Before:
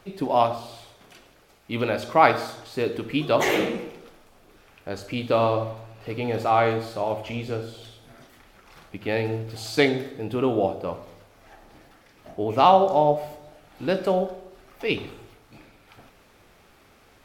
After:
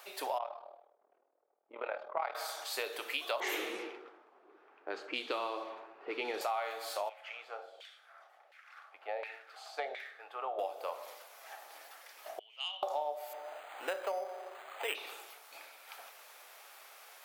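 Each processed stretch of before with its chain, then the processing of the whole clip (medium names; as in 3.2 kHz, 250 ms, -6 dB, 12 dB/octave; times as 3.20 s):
0.38–2.35 s: AM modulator 39 Hz, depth 65% + level-controlled noise filter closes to 350 Hz, open at -17.5 dBFS + tape spacing loss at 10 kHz 25 dB
3.40–6.41 s: resonant low shelf 450 Hz +8 dB, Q 3 + level-controlled noise filter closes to 920 Hz, open at -11.5 dBFS
7.09–10.59 s: band-stop 970 Hz, Q 5.7 + LFO band-pass saw down 1.4 Hz 570–2300 Hz
12.39–12.83 s: band-pass filter 3 kHz, Q 20 + transformer saturation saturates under 1.2 kHz
13.33–14.95 s: companding laws mixed up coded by mu + decimation joined by straight lines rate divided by 8×
whole clip: high-pass 610 Hz 24 dB/octave; compression 5:1, threshold -36 dBFS; treble shelf 8.9 kHz +12 dB; trim +1.5 dB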